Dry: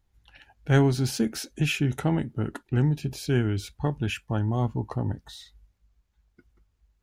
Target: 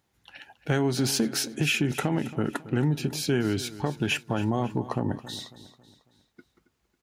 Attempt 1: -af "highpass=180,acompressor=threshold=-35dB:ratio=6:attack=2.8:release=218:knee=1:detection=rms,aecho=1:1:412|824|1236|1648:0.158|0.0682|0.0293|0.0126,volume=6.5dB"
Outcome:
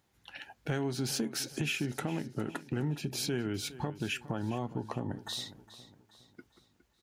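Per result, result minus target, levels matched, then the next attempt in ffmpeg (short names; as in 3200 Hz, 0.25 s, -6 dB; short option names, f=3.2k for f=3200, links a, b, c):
echo 0.138 s late; compressor: peak gain reduction +8.5 dB
-af "highpass=180,acompressor=threshold=-35dB:ratio=6:attack=2.8:release=218:knee=1:detection=rms,aecho=1:1:274|548|822|1096:0.158|0.0682|0.0293|0.0126,volume=6.5dB"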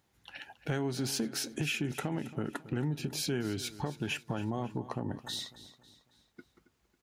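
compressor: peak gain reduction +8.5 dB
-af "highpass=180,acompressor=threshold=-25dB:ratio=6:attack=2.8:release=218:knee=1:detection=rms,aecho=1:1:274|548|822|1096:0.158|0.0682|0.0293|0.0126,volume=6.5dB"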